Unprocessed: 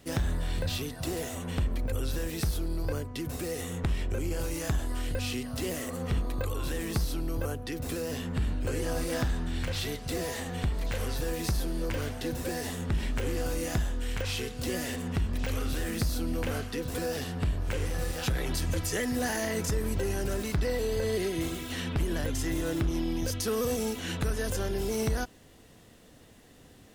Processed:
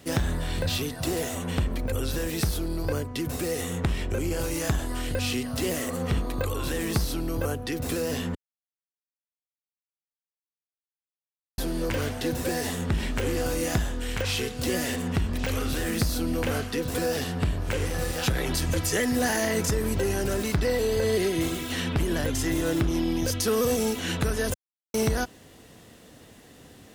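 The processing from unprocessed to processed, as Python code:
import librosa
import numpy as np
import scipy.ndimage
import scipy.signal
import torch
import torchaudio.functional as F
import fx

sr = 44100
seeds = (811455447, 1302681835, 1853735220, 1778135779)

y = fx.edit(x, sr, fx.silence(start_s=8.35, length_s=3.23),
    fx.silence(start_s=24.54, length_s=0.4), tone=tone)
y = fx.highpass(y, sr, hz=71.0, slope=6)
y = F.gain(torch.from_numpy(y), 5.5).numpy()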